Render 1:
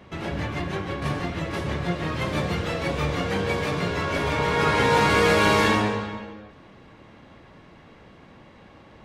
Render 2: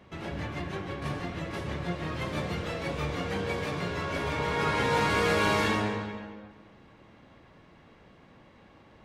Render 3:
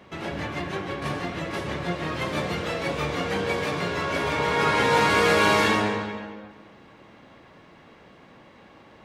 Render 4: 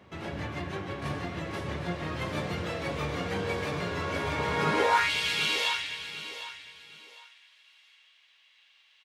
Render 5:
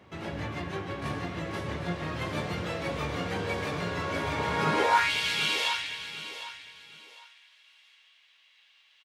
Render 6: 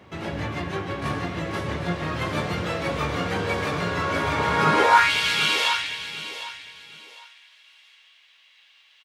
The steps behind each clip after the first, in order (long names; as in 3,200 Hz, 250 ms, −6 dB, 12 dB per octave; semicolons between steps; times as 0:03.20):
bucket-brigade delay 230 ms, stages 4,096, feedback 34%, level −14 dB; level −6.5 dB
low-shelf EQ 120 Hz −11 dB; level +6.5 dB
high-pass filter sweep 81 Hz → 3,000 Hz, 0:04.59–0:05.11; repeating echo 756 ms, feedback 27%, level −12 dB; level −6 dB
double-tracking delay 18 ms −11 dB
dynamic equaliser 1,300 Hz, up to +5 dB, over −42 dBFS, Q 2.6; level +5.5 dB